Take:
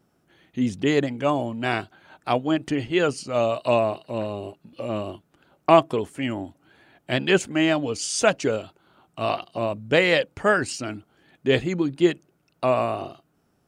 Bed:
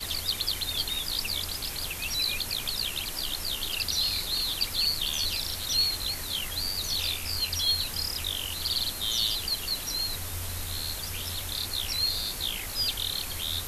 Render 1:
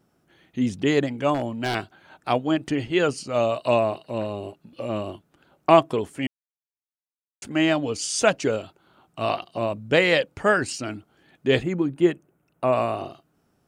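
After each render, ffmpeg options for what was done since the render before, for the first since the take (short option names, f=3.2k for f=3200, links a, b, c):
-filter_complex "[0:a]asettb=1/sr,asplit=3[a][b][c];[a]atrim=end=1.344[d];[b]atrim=start=1.34:end=1.75,asetpts=PTS-STARTPTS,afade=t=in:d=0.004:c=qsin,afade=t=out:st=0.406:d=0.004:c=qsin,aeval=exprs='0.141*(abs(mod(val(0)/0.141+3,4)-2)-1)':c=same[e];[c]atrim=start=1.746[f];[d][e]acrossfade=d=0.004:c1=hsin:c2=qsin[g];[g][f]acrossfade=d=0.004:c1=qsin:c2=hsin,asettb=1/sr,asplit=3[h][i][j];[h]atrim=end=11.634[k];[i]atrim=start=11.63:end=12.73,asetpts=PTS-STARTPTS,afade=t=in:d=0.004:c=qsin,afade=t=out:st=1.096:d=0.004:c=qsin,equalizer=f=4.6k:t=o:w=1.1:g=-13.5[l];[j]atrim=start=12.726[m];[k][l]acrossfade=d=0.004:c1=hsin:c2=qsin[n];[n][m]acrossfade=d=0.004:c1=qsin:c2=hsin,asplit=3[o][p][q];[o]atrim=end=6.27,asetpts=PTS-STARTPTS,afade=t=out:st=6.266:d=0.004:c=hsin[r];[p]atrim=start=6.27:end=7.42,asetpts=PTS-STARTPTS,volume=0[s];[q]atrim=start=7.42,asetpts=PTS-STARTPTS,afade=t=in:d=0.004:c=hsin[t];[r][s][t]concat=n=3:v=0:a=1"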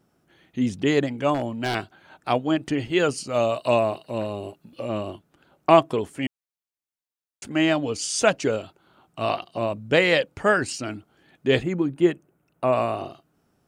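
-filter_complex "[0:a]asettb=1/sr,asplit=3[a][b][c];[a]atrim=end=2.854[d];[b]atrim=start=2.85:end=4.81,asetpts=PTS-STARTPTS,afade=t=in:d=0.004:c=qsin,afade=t=out:st=1.956:d=0.004:c=qsin,highshelf=f=8.3k:g=7.5[e];[c]atrim=start=4.806[f];[d][e]acrossfade=d=0.004:c1=hsin:c2=qsin[g];[g][f]acrossfade=d=0.004:c1=qsin:c2=hsin"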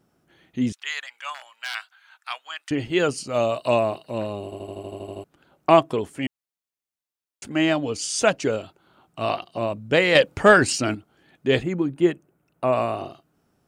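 -filter_complex "[0:a]asettb=1/sr,asplit=3[a][b][c];[a]atrim=end=0.724[d];[b]atrim=start=0.72:end=2.71,asetpts=PTS-STARTPTS,afade=t=in:d=0.004:c=qsin,afade=t=out:st=1.986:d=0.004:c=qsin,highpass=f=1.2k:w=0.5412,highpass=f=1.2k:w=1.3066[e];[c]atrim=start=2.706[f];[d][e]acrossfade=d=0.004:c1=hsin:c2=qsin[g];[g][f]acrossfade=d=0.004:c1=qsin:c2=hsin,asettb=1/sr,asplit=3[h][i][j];[h]atrim=end=10.154[k];[i]atrim=start=10.15:end=10.95,asetpts=PTS-STARTPTS,afade=t=in:d=0.004:c=qsin,afade=t=out:st=0.796:d=0.004:c=qsin,acontrast=86[l];[j]atrim=start=10.946[m];[k][l]acrossfade=d=0.004:c1=hsin:c2=qsin[n];[n][m]acrossfade=d=0.004:c1=qsin:c2=hsin,asplit=11[o][p][q][r][s][t][u][v][w][x][y];[o]atrim=end=4.522[z];[p]atrim=start=4.438:end=4.522[aa];[q]atrim=start=4.438:end=4.522[ab];[r]atrim=start=4.438:end=4.522[ac];[s]atrim=start=4.438:end=4.522[ad];[t]atrim=start=4.438:end=4.522[ae];[u]atrim=start=4.438:end=4.522[af];[v]atrim=start=4.438:end=4.522[ag];[w]atrim=start=4.438:end=4.522[ah];[x]atrim=start=4.438:end=4.522[ai];[y]atrim=start=5.238[aj];[z][aa]acrossfade=d=0.004:c1=hsin:c2=hsin[ak];[ak][ab]acrossfade=d=0.004:c1=hsin:c2=hsin[al];[al][ac]acrossfade=d=0.004:c1=hsin:c2=hsin[am];[am][ad]acrossfade=d=0.004:c1=hsin:c2=hsin[an];[an][ae]acrossfade=d=0.004:c1=hsin:c2=hsin[ao];[ao][af]acrossfade=d=0.004:c1=hsin:c2=hsin[ap];[ap][ag]acrossfade=d=0.004:c1=hsin:c2=hsin[aq];[aq][ah]acrossfade=d=0.004:c1=hsin:c2=hsin[ar];[ar][ai]acrossfade=d=0.004:c1=hsin:c2=hsin[as];[as][aj]acrossfade=d=0.004:c1=hsin:c2=hsin"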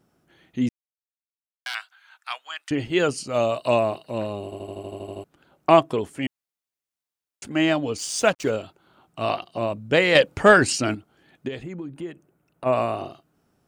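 -filter_complex "[0:a]asettb=1/sr,asplit=3[a][b][c];[a]atrim=end=7.984[d];[b]atrim=start=7.98:end=8.5,asetpts=PTS-STARTPTS,afade=t=in:d=0.004:c=qsin,afade=t=out:st=0.516:d=0.004:c=qsin,aeval=exprs='sgn(val(0))*max(abs(val(0))-0.00891,0)':c=same[e];[c]atrim=start=8.496[f];[d][e]acrossfade=d=0.004:c1=hsin:c2=qsin[g];[g][f]acrossfade=d=0.004:c1=qsin:c2=hsin,asplit=3[h][i][j];[h]afade=t=out:st=11.47:d=0.02[k];[i]acompressor=threshold=-34dB:ratio=3:attack=3.2:release=140:knee=1:detection=peak,afade=t=in:st=11.47:d=0.02,afade=t=out:st=12.65:d=0.02[l];[j]afade=t=in:st=12.65:d=0.02[m];[k][l][m]amix=inputs=3:normalize=0,asplit=3[n][o][p];[n]atrim=end=0.69,asetpts=PTS-STARTPTS,afade=t=out:st=0.686:d=0.004:c=hsin[q];[o]atrim=start=0.69:end=1.66,asetpts=PTS-STARTPTS,volume=0[r];[p]atrim=start=1.66,asetpts=PTS-STARTPTS,afade=t=in:d=0.004:c=hsin[s];[q][r][s]concat=n=3:v=0:a=1"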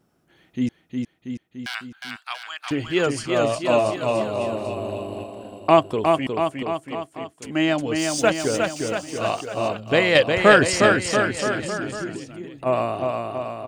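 -af "aecho=1:1:360|684|975.6|1238|1474:0.631|0.398|0.251|0.158|0.1"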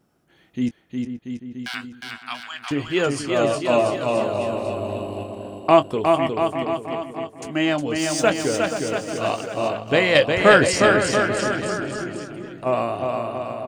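-filter_complex "[0:a]asplit=2[a][b];[b]adelay=21,volume=-11.5dB[c];[a][c]amix=inputs=2:normalize=0,asplit=2[d][e];[e]adelay=480,lowpass=f=1.4k:p=1,volume=-9dB,asplit=2[f][g];[g]adelay=480,lowpass=f=1.4k:p=1,volume=0.25,asplit=2[h][i];[i]adelay=480,lowpass=f=1.4k:p=1,volume=0.25[j];[d][f][h][j]amix=inputs=4:normalize=0"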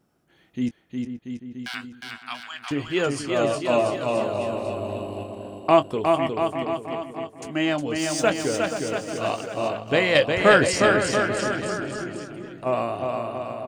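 -af "volume=-2.5dB"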